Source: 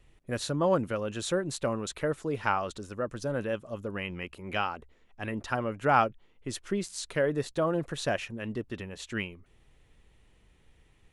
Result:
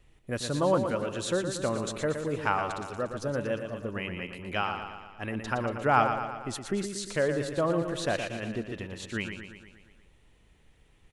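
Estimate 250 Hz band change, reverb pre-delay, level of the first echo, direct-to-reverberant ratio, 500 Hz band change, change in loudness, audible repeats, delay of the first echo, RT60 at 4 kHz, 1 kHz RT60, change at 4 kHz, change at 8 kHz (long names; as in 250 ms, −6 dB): +1.0 dB, no reverb audible, −7.5 dB, no reverb audible, +1.0 dB, +1.0 dB, 6, 117 ms, no reverb audible, no reverb audible, +1.0 dB, +1.0 dB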